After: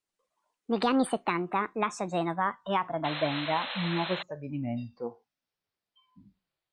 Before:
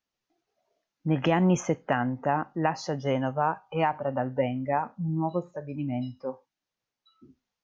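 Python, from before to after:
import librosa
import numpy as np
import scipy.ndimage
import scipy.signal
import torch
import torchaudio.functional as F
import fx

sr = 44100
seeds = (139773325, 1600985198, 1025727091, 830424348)

y = fx.speed_glide(x, sr, from_pct=157, to_pct=70)
y = fx.spec_paint(y, sr, seeds[0], shape='noise', start_s=3.04, length_s=1.19, low_hz=480.0, high_hz=4200.0, level_db=-34.0)
y = y * 10.0 ** (-2.5 / 20.0)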